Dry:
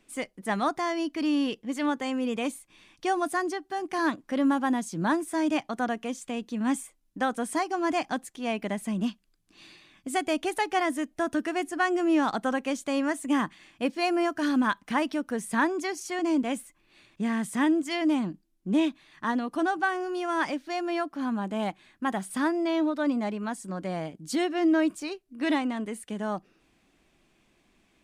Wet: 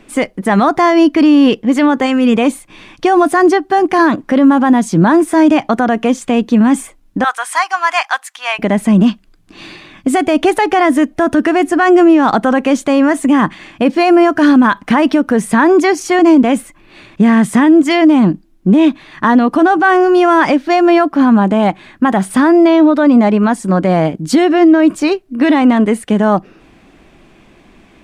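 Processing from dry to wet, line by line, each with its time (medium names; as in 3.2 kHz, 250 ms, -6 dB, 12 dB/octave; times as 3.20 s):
2.06–2.33 s: time-frequency box 250–1200 Hz -7 dB
7.24–8.59 s: high-pass 1 kHz 24 dB/octave
whole clip: treble shelf 3.4 kHz -12 dB; loudness maximiser +23.5 dB; trim -1 dB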